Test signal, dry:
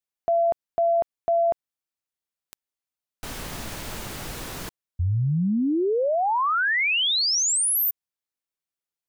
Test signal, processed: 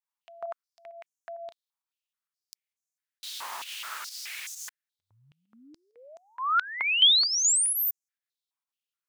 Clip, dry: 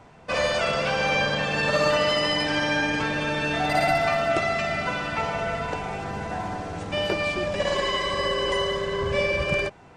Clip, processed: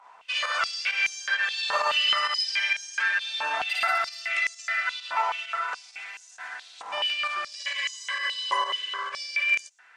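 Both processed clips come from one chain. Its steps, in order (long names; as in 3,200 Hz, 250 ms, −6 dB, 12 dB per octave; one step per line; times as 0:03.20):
fake sidechain pumping 132 BPM, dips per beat 1, −8 dB, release 105 ms
high-pass on a step sequencer 4.7 Hz 970–6,500 Hz
level −4 dB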